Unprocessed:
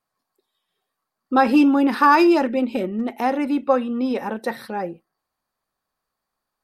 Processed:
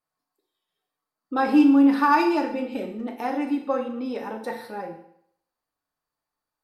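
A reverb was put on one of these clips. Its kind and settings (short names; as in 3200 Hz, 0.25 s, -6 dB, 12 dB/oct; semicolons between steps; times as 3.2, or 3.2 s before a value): FDN reverb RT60 0.68 s, low-frequency decay 0.85×, high-frequency decay 0.95×, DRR 1.5 dB; gain -8 dB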